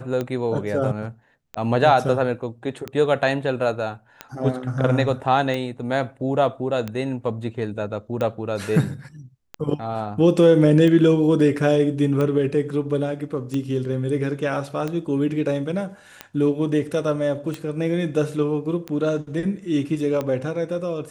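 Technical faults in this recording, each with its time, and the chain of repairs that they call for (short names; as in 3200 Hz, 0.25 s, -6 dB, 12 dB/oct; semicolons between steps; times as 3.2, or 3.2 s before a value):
tick 45 rpm -14 dBFS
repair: de-click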